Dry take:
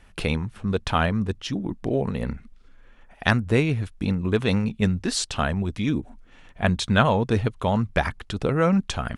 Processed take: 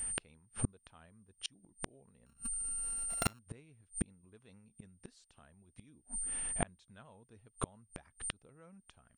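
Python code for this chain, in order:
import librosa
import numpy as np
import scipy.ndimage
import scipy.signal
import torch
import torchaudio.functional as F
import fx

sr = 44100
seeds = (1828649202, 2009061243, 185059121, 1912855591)

y = fx.sample_sort(x, sr, block=32, at=(2.26, 3.39))
y = y + 10.0 ** (-37.0 / 20.0) * np.sin(2.0 * np.pi * 8900.0 * np.arange(len(y)) / sr)
y = fx.gate_flip(y, sr, shuts_db=-19.0, range_db=-39)
y = F.gain(torch.from_numpy(y), 1.0).numpy()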